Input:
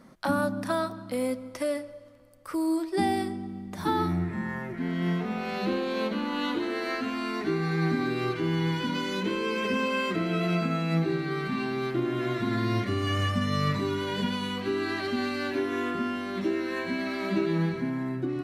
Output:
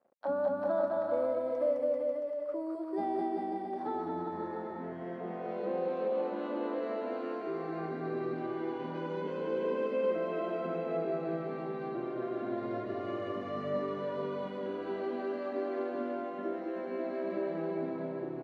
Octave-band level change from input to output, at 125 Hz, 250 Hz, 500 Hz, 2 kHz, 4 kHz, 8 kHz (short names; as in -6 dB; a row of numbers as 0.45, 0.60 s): -16.5 dB, -9.5 dB, -0.5 dB, -14.5 dB, -20.5 dB, under -25 dB